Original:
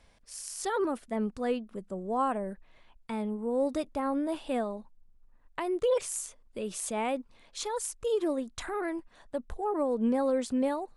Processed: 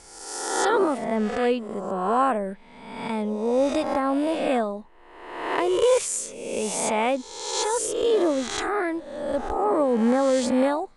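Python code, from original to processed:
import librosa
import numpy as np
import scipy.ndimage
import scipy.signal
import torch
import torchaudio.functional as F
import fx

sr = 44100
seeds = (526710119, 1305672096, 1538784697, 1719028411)

y = fx.spec_swells(x, sr, rise_s=1.07)
y = scipy.signal.sosfilt(scipy.signal.butter(4, 9300.0, 'lowpass', fs=sr, output='sos'), y)
y = fx.low_shelf(y, sr, hz=89.0, db=-7.5)
y = y * 10.0 ** (6.5 / 20.0)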